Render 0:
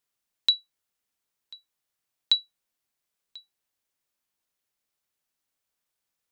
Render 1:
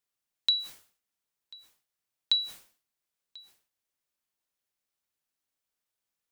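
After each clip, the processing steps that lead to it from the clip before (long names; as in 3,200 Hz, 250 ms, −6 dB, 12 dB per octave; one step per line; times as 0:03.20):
level that may fall only so fast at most 130 dB per second
level −4 dB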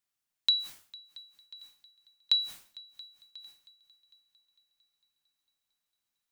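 parametric band 470 Hz −5.5 dB 0.72 octaves
echo machine with several playback heads 226 ms, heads second and third, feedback 44%, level −23 dB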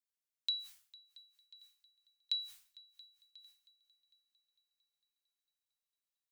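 guitar amp tone stack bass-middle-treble 10-0-10
level −8.5 dB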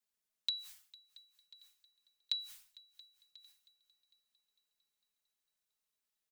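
comb filter 4.7 ms, depth 74%
level +2 dB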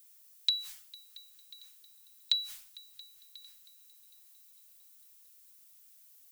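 background noise violet −67 dBFS
level +7.5 dB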